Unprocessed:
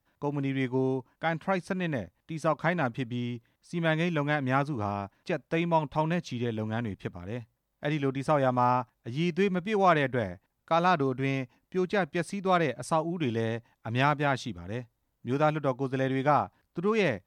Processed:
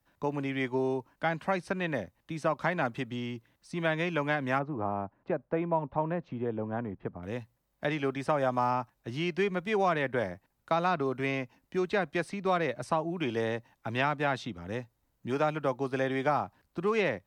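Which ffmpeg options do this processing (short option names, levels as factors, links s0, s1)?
-filter_complex "[0:a]asplit=3[s0][s1][s2];[s0]afade=t=out:st=4.58:d=0.02[s3];[s1]lowpass=1100,afade=t=in:st=4.58:d=0.02,afade=t=out:st=7.22:d=0.02[s4];[s2]afade=t=in:st=7.22:d=0.02[s5];[s3][s4][s5]amix=inputs=3:normalize=0,acrossover=split=110|340|4000[s6][s7][s8][s9];[s6]acompressor=threshold=0.00178:ratio=4[s10];[s7]acompressor=threshold=0.01:ratio=4[s11];[s8]acompressor=threshold=0.0447:ratio=4[s12];[s9]acompressor=threshold=0.00178:ratio=4[s13];[s10][s11][s12][s13]amix=inputs=4:normalize=0,bandreject=f=3400:w=28,volume=1.26"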